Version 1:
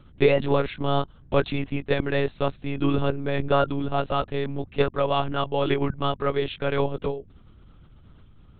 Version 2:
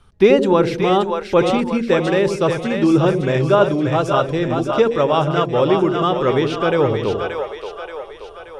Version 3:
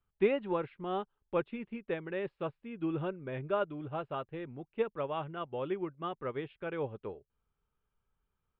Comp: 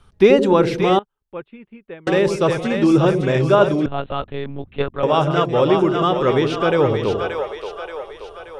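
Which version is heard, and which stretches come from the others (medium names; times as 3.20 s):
2
0.99–2.07 s: from 3
3.86–5.03 s: from 1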